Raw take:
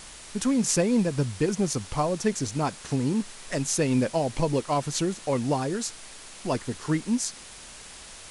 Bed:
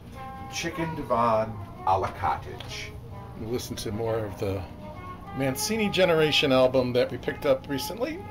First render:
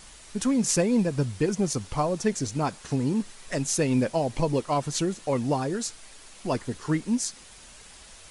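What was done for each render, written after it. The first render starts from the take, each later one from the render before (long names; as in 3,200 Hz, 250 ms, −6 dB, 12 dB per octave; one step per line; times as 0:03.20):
broadband denoise 6 dB, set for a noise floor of −45 dBFS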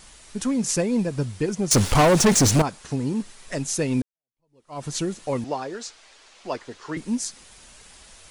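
0:01.71–0:02.62: leveller curve on the samples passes 5
0:04.02–0:04.84: fade in exponential
0:05.44–0:06.97: three-way crossover with the lows and the highs turned down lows −14 dB, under 350 Hz, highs −21 dB, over 6,900 Hz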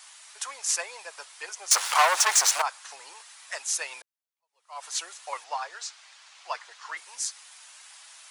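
inverse Chebyshev high-pass filter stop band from 240 Hz, stop band 60 dB
dynamic equaliser 1,300 Hz, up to +3 dB, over −37 dBFS, Q 0.91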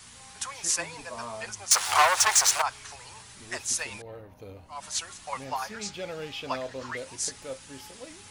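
mix in bed −15.5 dB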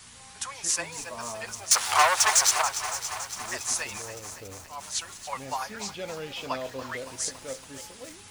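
delay with a high-pass on its return 581 ms, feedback 50%, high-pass 4,000 Hz, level −17.5 dB
feedback echo at a low word length 281 ms, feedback 80%, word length 7 bits, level −12 dB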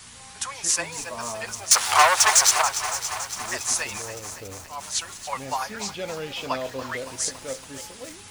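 level +4 dB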